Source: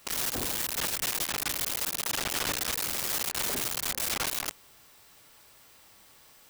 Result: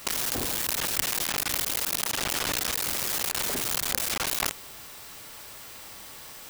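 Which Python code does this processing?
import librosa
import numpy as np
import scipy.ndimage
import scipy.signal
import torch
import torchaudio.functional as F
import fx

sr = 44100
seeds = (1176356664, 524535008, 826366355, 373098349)

p1 = fx.over_compress(x, sr, threshold_db=-38.0, ratio=-0.5)
p2 = x + (p1 * librosa.db_to_amplitude(1.0))
y = fx.quant_companded(p2, sr, bits=4)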